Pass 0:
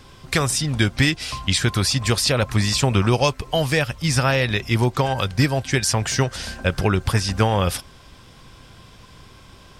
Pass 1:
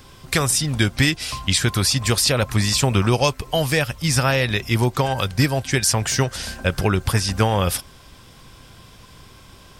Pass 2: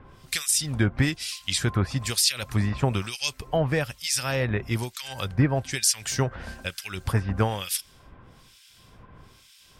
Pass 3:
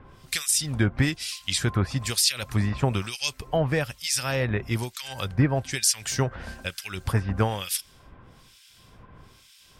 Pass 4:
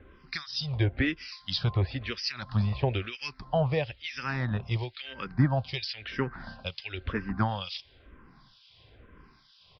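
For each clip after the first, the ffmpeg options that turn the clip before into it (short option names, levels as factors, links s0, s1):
-af "highshelf=f=11000:g=12"
-filter_complex "[0:a]acrossover=split=2000[s0][s1];[s0]aeval=exprs='val(0)*(1-1/2+1/2*cos(2*PI*1.1*n/s))':c=same[s2];[s1]aeval=exprs='val(0)*(1-1/2-1/2*cos(2*PI*1.1*n/s))':c=same[s3];[s2][s3]amix=inputs=2:normalize=0,volume=0.794"
-af anull
-filter_complex "[0:a]aresample=11025,aresample=44100,aeval=exprs='0.398*(cos(1*acos(clip(val(0)/0.398,-1,1)))-cos(1*PI/2))+0.0112*(cos(3*acos(clip(val(0)/0.398,-1,1)))-cos(3*PI/2))':c=same,asplit=2[s0][s1];[s1]afreqshift=-1[s2];[s0][s2]amix=inputs=2:normalize=1"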